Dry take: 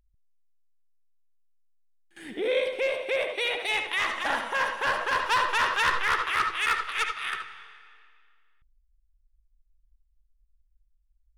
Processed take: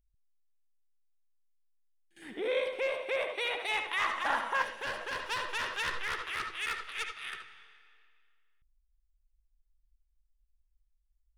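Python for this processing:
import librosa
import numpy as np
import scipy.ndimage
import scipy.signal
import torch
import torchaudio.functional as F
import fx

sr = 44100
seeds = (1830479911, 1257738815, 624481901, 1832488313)

y = fx.peak_eq(x, sr, hz=1100.0, db=fx.steps((0.0, -11.5), (2.22, 6.5), (4.62, -7.5)), octaves=1.1)
y = y * librosa.db_to_amplitude(-6.5)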